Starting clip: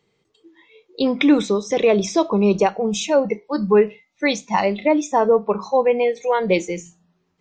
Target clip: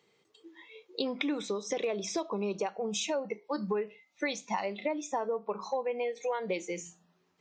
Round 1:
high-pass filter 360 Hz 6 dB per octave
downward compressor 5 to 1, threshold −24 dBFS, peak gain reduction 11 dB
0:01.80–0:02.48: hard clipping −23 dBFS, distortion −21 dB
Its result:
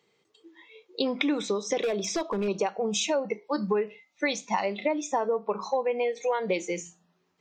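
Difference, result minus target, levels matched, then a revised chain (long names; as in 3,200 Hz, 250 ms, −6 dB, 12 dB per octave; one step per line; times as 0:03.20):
downward compressor: peak gain reduction −5.5 dB
high-pass filter 360 Hz 6 dB per octave
downward compressor 5 to 1, threshold −31 dBFS, peak gain reduction 16.5 dB
0:01.80–0:02.48: hard clipping −23 dBFS, distortion −39 dB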